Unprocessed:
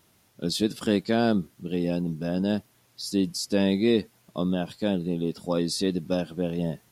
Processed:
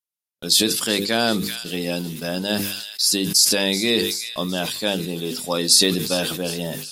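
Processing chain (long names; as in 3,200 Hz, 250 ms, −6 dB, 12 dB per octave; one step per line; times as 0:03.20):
spectral tilt +4 dB per octave
noise gate −45 dBFS, range −42 dB
in parallel at −1.5 dB: speech leveller within 4 dB 2 s
on the sum: low-shelf EQ 92 Hz +9 dB
mains-hum notches 50/100/150/200/250/300/350/400/450/500 Hz
on a send: delay with a high-pass on its return 381 ms, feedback 61%, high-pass 2,100 Hz, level −15.5 dB
on the sum: level that may fall only so fast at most 43 dB per second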